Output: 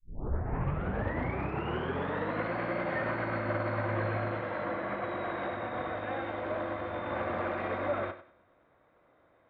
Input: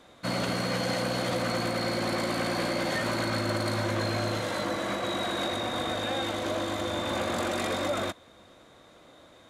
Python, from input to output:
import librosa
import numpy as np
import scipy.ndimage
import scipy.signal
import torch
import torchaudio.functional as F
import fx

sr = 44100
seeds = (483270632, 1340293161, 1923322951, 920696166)

p1 = fx.tape_start_head(x, sr, length_s=2.54)
p2 = scipy.signal.sosfilt(scipy.signal.butter(4, 2200.0, 'lowpass', fs=sr, output='sos'), p1)
p3 = fx.peak_eq(p2, sr, hz=240.0, db=-4.5, octaves=1.1)
p4 = p3 + fx.echo_thinned(p3, sr, ms=96, feedback_pct=37, hz=150.0, wet_db=-8.0, dry=0)
y = fx.upward_expand(p4, sr, threshold_db=-46.0, expansion=1.5)